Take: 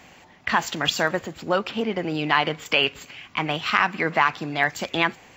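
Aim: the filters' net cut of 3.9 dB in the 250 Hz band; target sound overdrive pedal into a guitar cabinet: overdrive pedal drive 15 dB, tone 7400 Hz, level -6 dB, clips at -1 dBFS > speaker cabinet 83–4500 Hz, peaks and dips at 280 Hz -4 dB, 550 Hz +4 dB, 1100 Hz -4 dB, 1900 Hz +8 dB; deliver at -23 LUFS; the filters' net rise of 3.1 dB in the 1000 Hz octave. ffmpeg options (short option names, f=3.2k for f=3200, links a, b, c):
-filter_complex "[0:a]equalizer=f=250:t=o:g=-4,equalizer=f=1k:t=o:g=5.5,asplit=2[a][b];[b]highpass=f=720:p=1,volume=15dB,asoftclip=type=tanh:threshold=-1dB[c];[a][c]amix=inputs=2:normalize=0,lowpass=f=7.4k:p=1,volume=-6dB,highpass=83,equalizer=f=280:t=q:w=4:g=-4,equalizer=f=550:t=q:w=4:g=4,equalizer=f=1.1k:t=q:w=4:g=-4,equalizer=f=1.9k:t=q:w=4:g=8,lowpass=f=4.5k:w=0.5412,lowpass=f=4.5k:w=1.3066,volume=-9dB"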